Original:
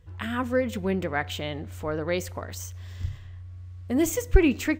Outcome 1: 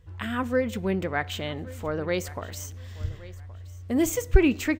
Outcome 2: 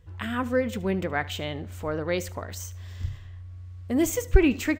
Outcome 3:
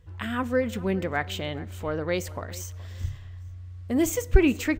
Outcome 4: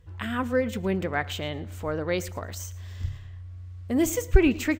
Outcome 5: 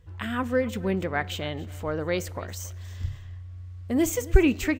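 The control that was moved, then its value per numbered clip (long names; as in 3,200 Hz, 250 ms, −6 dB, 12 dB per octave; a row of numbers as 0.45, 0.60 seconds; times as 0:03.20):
repeating echo, delay time: 1,122, 75, 422, 112, 277 milliseconds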